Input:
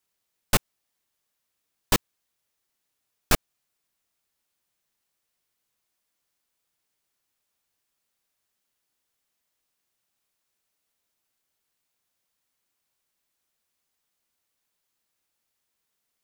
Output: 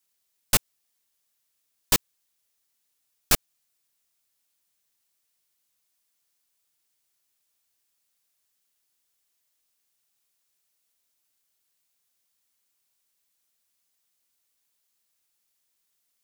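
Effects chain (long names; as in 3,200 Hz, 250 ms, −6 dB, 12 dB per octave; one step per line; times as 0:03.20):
high-shelf EQ 2,900 Hz +9.5 dB
level −4 dB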